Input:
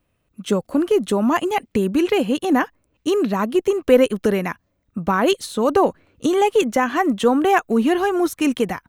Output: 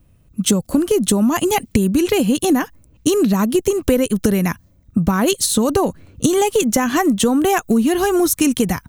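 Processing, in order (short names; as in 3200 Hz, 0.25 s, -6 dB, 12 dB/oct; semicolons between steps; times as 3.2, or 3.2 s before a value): tone controls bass +13 dB, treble +15 dB; compressor, threshold -19 dBFS, peak gain reduction 13 dB; mismatched tape noise reduction decoder only; gain +6 dB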